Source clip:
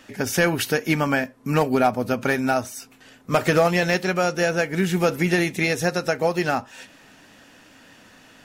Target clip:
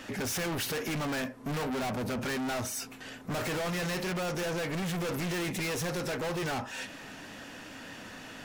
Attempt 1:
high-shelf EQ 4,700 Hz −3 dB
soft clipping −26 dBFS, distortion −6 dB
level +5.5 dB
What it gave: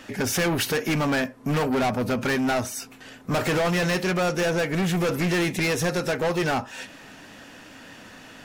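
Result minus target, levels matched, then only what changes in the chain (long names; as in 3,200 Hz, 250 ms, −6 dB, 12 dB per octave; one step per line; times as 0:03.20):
soft clipping: distortion −4 dB
change: soft clipping −37 dBFS, distortion −2 dB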